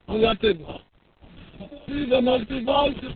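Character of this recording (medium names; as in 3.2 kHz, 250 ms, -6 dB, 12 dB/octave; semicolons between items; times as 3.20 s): aliases and images of a low sample rate 2 kHz, jitter 0%; phasing stages 2, 1.9 Hz, lowest notch 780–1600 Hz; a quantiser's noise floor 10-bit, dither none; Opus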